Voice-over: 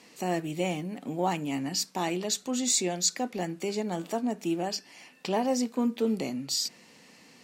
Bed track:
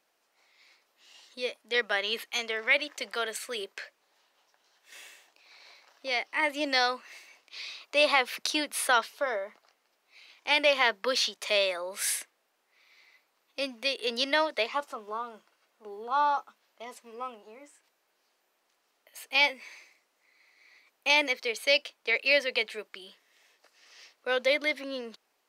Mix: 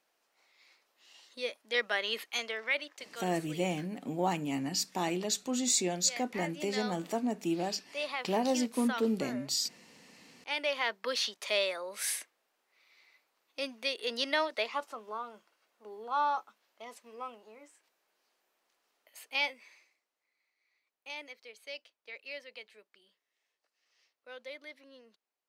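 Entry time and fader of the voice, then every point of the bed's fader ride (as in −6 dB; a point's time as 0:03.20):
3.00 s, −2.5 dB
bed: 0:02.37 −3 dB
0:03.26 −13 dB
0:10.10 −13 dB
0:11.31 −4 dB
0:19.06 −4 dB
0:20.58 −19.5 dB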